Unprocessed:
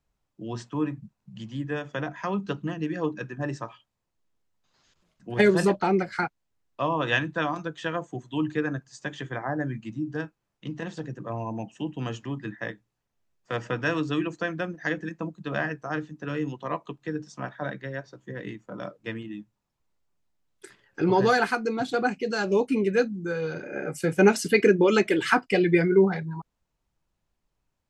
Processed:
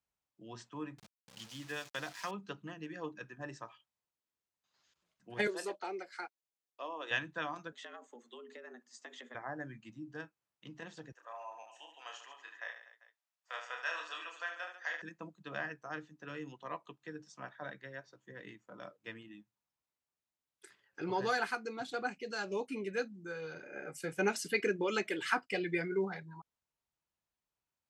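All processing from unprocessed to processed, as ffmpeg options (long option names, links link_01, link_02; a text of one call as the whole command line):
ffmpeg -i in.wav -filter_complex "[0:a]asettb=1/sr,asplit=3[link_01][link_02][link_03];[link_01]atrim=end=0.984[link_04];[link_02]atrim=start=0.98:end=2.31,asetpts=PTS-STARTPTS,afade=type=in:duration=0.004:curve=qsin,afade=type=out:start_time=1.326:duration=0.004:curve=qsin,aeval=exprs='val(0)*gte(abs(val(0)),0.0075)':channel_layout=same,equalizer=frequency=5300:width_type=o:width=2.2:gain=11[link_05];[link_03]atrim=start=2.306[link_06];[link_04][link_05]acrossfade=duration=0.004:curve1=hsin:curve2=qsin[link_07];[link_07][link_06]acrossfade=duration=0.004:curve1=qsin:curve2=hsin,asettb=1/sr,asplit=3[link_08][link_09][link_10];[link_08]atrim=end=5.474[link_11];[link_09]atrim=start=5.47:end=7.11,asetpts=PTS-STARTPTS,afade=type=in:duration=0.004:curve=qsin,afade=type=out:start_time=1.636:duration=0.004:curve=qsin,highpass=frequency=330:width=0.5412,highpass=frequency=330:width=1.3066,equalizer=frequency=1400:width_type=o:width=2.5:gain=-6[link_12];[link_10]atrim=start=7.106[link_13];[link_11][link_12]acrossfade=duration=0.004:curve1=hsin:curve2=qsin[link_14];[link_14][link_13]acrossfade=duration=0.004:curve1=qsin:curve2=hsin,asettb=1/sr,asplit=3[link_15][link_16][link_17];[link_15]atrim=end=7.724[link_18];[link_16]atrim=start=7.72:end=9.35,asetpts=PTS-STARTPTS,afade=type=in:duration=0.004:curve=qsin,afade=type=out:start_time=1.626:duration=0.004:curve=qsin,acompressor=threshold=-33dB:ratio=10:attack=3.2:release=140:knee=1:detection=peak,afreqshift=110[link_19];[link_17]atrim=start=9.346[link_20];[link_18][link_19]acrossfade=duration=0.004:curve1=hsin:curve2=qsin[link_21];[link_21][link_20]acrossfade=duration=0.004:curve1=qsin:curve2=hsin,asettb=1/sr,asplit=3[link_22][link_23][link_24];[link_22]atrim=end=11.124[link_25];[link_23]atrim=start=11.12:end=15.02,asetpts=PTS-STARTPTS,afade=type=in:duration=0.004:curve=qsin,afade=type=out:start_time=3.896:duration=0.004:curve=qsin,highpass=frequency=650:width=0.5412,highpass=frequency=650:width=1.3066,aecho=1:1:30|75|142.5|243.8|395.6:0.631|0.398|0.251|0.158|0.1,atrim=end_sample=171990[link_26];[link_24]atrim=start=15.016[link_27];[link_25][link_26]acrossfade=duration=0.004:curve1=hsin:curve2=qsin[link_28];[link_28][link_27]acrossfade=duration=0.004:curve1=qsin:curve2=hsin,highpass=54,lowshelf=frequency=490:gain=-10,volume=-8.5dB" out.wav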